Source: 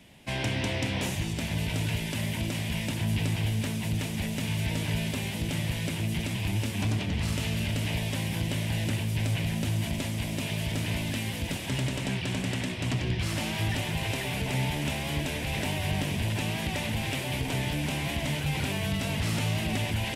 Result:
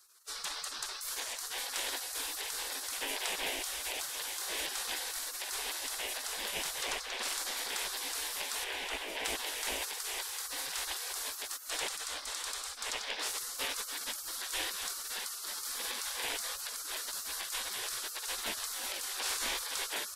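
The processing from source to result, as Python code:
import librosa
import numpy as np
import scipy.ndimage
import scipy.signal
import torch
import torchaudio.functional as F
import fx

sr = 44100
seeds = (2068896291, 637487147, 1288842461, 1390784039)

y = fx.high_shelf(x, sr, hz=4100.0, db=-10.5, at=(8.64, 9.25))
y = fx.spec_gate(y, sr, threshold_db=-25, keep='weak')
y = y * 10.0 ** (5.0 / 20.0)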